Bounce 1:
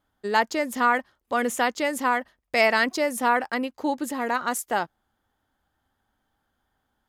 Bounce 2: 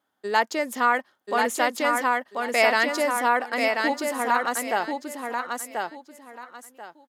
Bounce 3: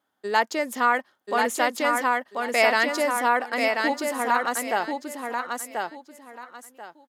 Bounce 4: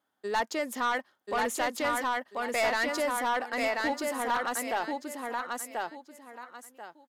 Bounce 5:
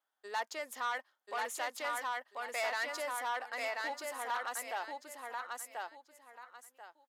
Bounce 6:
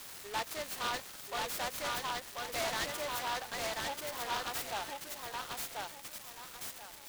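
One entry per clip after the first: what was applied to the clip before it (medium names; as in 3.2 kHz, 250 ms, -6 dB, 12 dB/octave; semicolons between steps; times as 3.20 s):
high-pass 270 Hz 12 dB/octave; feedback delay 1037 ms, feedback 24%, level -4 dB
no audible change
saturation -18 dBFS, distortion -11 dB; trim -3.5 dB
high-pass 620 Hz 12 dB/octave; trim -6.5 dB
zero-crossing glitches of -36.5 dBFS; delay time shaken by noise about 2 kHz, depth 0.094 ms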